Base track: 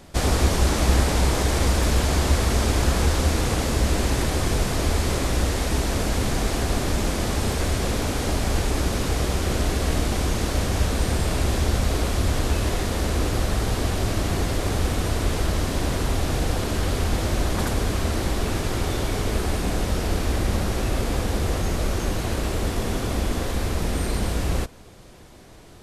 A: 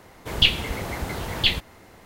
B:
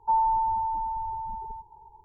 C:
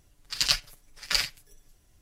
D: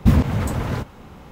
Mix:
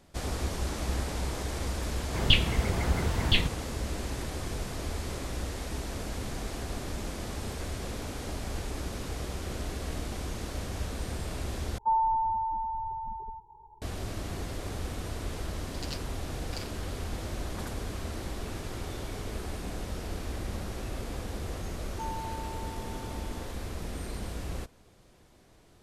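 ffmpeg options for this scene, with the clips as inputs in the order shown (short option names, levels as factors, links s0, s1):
-filter_complex "[2:a]asplit=2[s0][s1];[0:a]volume=0.237[s2];[1:a]bass=f=250:g=6,treble=f=4000:g=-8[s3];[s0]lowpass=1000[s4];[s2]asplit=2[s5][s6];[s5]atrim=end=11.784[s7];[s4]atrim=end=2.04,asetpts=PTS-STARTPTS,volume=0.944[s8];[s6]atrim=start=13.816[s9];[s3]atrim=end=2.05,asetpts=PTS-STARTPTS,volume=0.668,afade=t=in:d=0.004:c=hsin,afade=t=out:st=2.046:d=0.004:c=hsin,adelay=1880[s10];[3:a]atrim=end=2.01,asetpts=PTS-STARTPTS,volume=0.126,afade=t=in:d=0.004:c=hsin,afade=t=out:st=2.006:d=0.004:c=hsin,adelay=15420[s11];[s1]atrim=end=2.04,asetpts=PTS-STARTPTS,volume=0.168,afade=t=in:d=0.004:c=hsin,afade=t=out:st=2.036:d=0.004:c=hsin,adelay=21910[s12];[s7][s8]acrossfade=d=0.004:c1=hsin:c2=hsin[s13];[s13][s9]acrossfade=d=0.004:c1=hsin:c2=hsin[s14];[s14][s10][s11][s12]amix=inputs=4:normalize=0"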